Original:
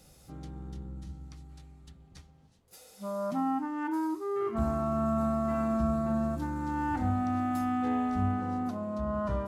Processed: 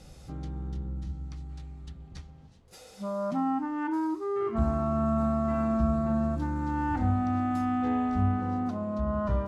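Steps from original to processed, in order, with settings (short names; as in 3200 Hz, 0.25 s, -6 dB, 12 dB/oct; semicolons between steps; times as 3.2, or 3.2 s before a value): low shelf 96 Hz +7 dB; in parallel at +0.5 dB: compressor, threshold -45 dBFS, peak gain reduction 21.5 dB; on the sum: air absorption 57 m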